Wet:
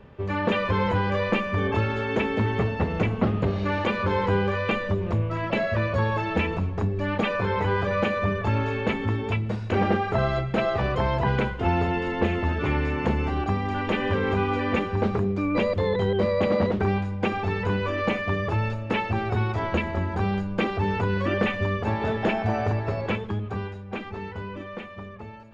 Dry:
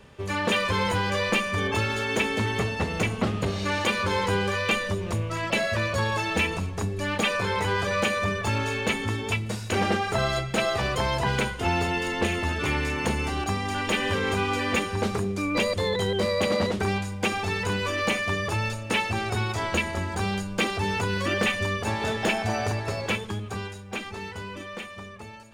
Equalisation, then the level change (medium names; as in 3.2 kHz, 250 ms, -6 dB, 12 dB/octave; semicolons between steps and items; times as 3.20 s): tape spacing loss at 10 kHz 35 dB; +4.0 dB